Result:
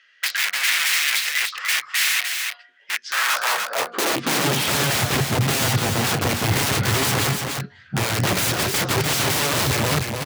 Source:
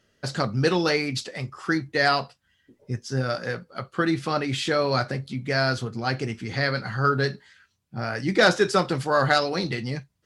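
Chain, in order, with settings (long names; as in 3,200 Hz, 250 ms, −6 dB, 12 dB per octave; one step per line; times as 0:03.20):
low-pass filter 3,600 Hz 12 dB per octave
low-shelf EQ 87 Hz +4.5 dB
hum removal 238.7 Hz, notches 6
in parallel at +2 dB: downward compressor 5 to 1, threshold −30 dBFS, peak gain reduction 15 dB
on the sum: wrap-around overflow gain 21 dB
high-pass filter sweep 2,000 Hz → 100 Hz, 0:03.02–0:04.75
pitch-shifted copies added −3 semitones −15 dB
on a send: single-tap delay 297 ms −5 dB
on the sum: level +3.5 dB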